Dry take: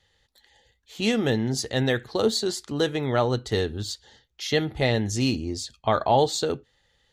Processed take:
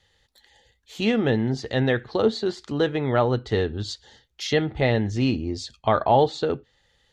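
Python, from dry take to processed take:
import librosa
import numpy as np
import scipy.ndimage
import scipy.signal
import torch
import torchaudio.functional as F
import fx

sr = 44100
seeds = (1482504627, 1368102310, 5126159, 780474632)

y = fx.env_lowpass_down(x, sr, base_hz=2800.0, full_db=-23.5)
y = y * librosa.db_to_amplitude(2.0)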